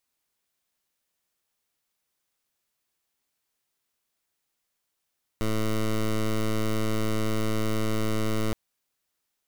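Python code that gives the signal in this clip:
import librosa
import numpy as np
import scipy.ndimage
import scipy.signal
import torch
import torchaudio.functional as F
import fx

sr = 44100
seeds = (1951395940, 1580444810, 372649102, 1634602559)

y = fx.pulse(sr, length_s=3.12, hz=109.0, level_db=-25.0, duty_pct=13)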